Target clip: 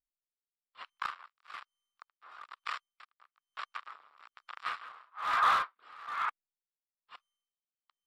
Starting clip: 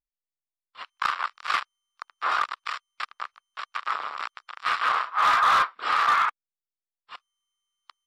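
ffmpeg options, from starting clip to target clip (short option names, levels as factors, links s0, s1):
-af "equalizer=f=5700:t=o:w=0.77:g=-3.5,aeval=exprs='val(0)*pow(10,-24*(0.5-0.5*cos(2*PI*1.1*n/s))/20)':c=same,volume=0.562"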